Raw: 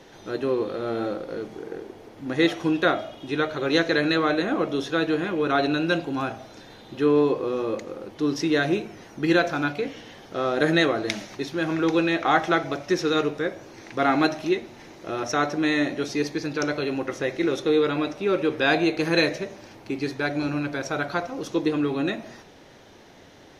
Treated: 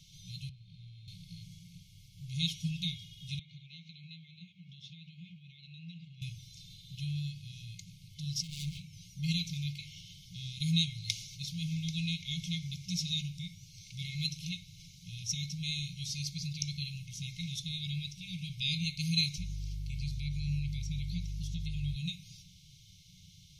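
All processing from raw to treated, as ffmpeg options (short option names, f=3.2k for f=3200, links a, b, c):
-filter_complex "[0:a]asettb=1/sr,asplit=3[a][b][c];[a]atrim=end=0.494[d];[b]atrim=start=0.49:end=1.08,asetpts=PTS-STARTPTS,afade=t=in:d=0.004:c=qsin,afade=t=out:st=0.586:d=0.004:c=qsin,aemphasis=mode=reproduction:type=75fm,acrossover=split=140|420[e][f][g];[e]acompressor=threshold=-54dB:ratio=4[h];[f]acompressor=threshold=-39dB:ratio=4[i];[g]acompressor=threshold=-39dB:ratio=4[j];[h][i][j]amix=inputs=3:normalize=0[k];[c]atrim=start=1.076[l];[d][k]acrossfade=d=0.004:c1=hsin:c2=qsin[m];[m][l]acrossfade=d=0.004:c1=qsin:c2=hsin,asettb=1/sr,asplit=3[n][o][p];[n]atrim=end=3.394[q];[o]atrim=start=3.39:end=6.22,asetpts=PTS-STARTPTS,afade=t=in:d=0.004:c=qsin,afade=t=out:st=2.826:d=0.004:c=qsin,acompressor=threshold=-27dB:ratio=12:attack=3.2:release=140:knee=1:detection=peak,highpass=220,lowpass=2.2k[r];[p]atrim=start=6.216[s];[q][r]acrossfade=d=0.004:c1=hsin:c2=qsin[t];[t][s]acrossfade=d=0.004:c1=qsin:c2=hsin,asettb=1/sr,asplit=3[u][v][w];[u]atrim=end=8.414[x];[v]atrim=start=8.41:end=8.93,asetpts=PTS-STARTPTS,afade=t=in:d=0.004:c=qsin,afade=t=out:st=0.516:d=0.004:c=qsin,highpass=f=68:w=0.5412,highpass=f=68:w=1.3066,highshelf=f=2.3k:g=-4.5,asoftclip=type=hard:threshold=-28dB[y];[w]atrim=start=8.926[z];[x][y]acrossfade=d=0.004:c1=hsin:c2=qsin[aa];[aa][z]acrossfade=d=0.004:c1=qsin:c2=hsin,asettb=1/sr,asplit=3[ab][ac][ad];[ab]atrim=end=19.384[ae];[ac]atrim=start=19.38:end=21.96,asetpts=PTS-STARTPTS,afade=t=in:d=0.004:c=qsin,afade=t=out:st=2.576:d=0.004:c=qsin,aeval=exprs='val(0)+0.0158*(sin(2*PI*50*n/s)+sin(2*PI*2*50*n/s)/2+sin(2*PI*3*50*n/s)/3+sin(2*PI*4*50*n/s)/4+sin(2*PI*5*50*n/s)/5)':c=same,acrossover=split=2700[af][ag];[ag]acompressor=threshold=-46dB:ratio=4:attack=1:release=60[ah];[af][ah]amix=inputs=2:normalize=0[ai];[ad]atrim=start=21.956[aj];[ae][ai]acrossfade=d=0.004:c1=hsin:c2=qsin[ak];[ak][aj]acrossfade=d=0.004:c1=qsin:c2=hsin,equalizer=f=2.4k:t=o:w=0.49:g=-13.5,afftfilt=real='re*(1-between(b*sr/4096,190,2100))':imag='im*(1-between(b*sr/4096,190,2100))':win_size=4096:overlap=0.75"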